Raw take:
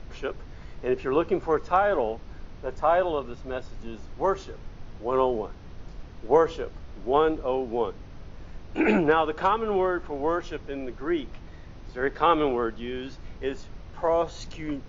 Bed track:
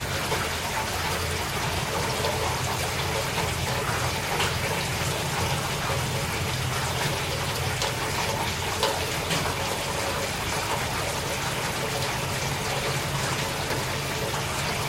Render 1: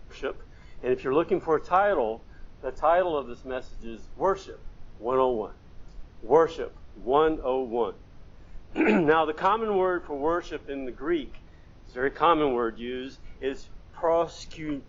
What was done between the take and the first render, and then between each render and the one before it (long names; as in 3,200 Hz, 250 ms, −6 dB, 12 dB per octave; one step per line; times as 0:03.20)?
noise reduction from a noise print 7 dB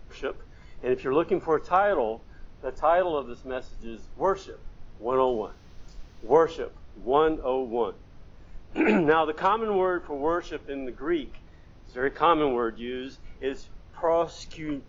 0:05.27–0:06.33: high-shelf EQ 3,400 Hz +11 dB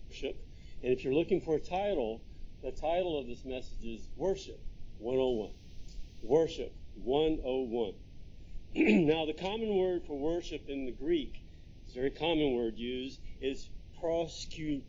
Chebyshev band-stop filter 610–2,600 Hz, order 2
parametric band 560 Hz −8.5 dB 1.2 octaves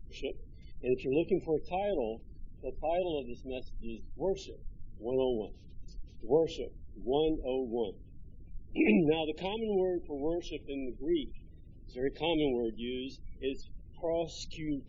gate on every frequency bin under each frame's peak −30 dB strong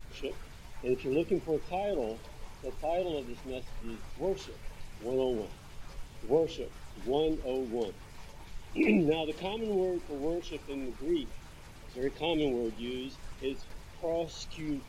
mix in bed track −26.5 dB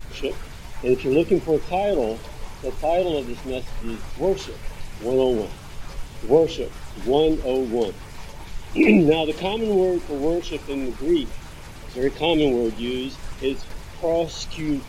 level +11 dB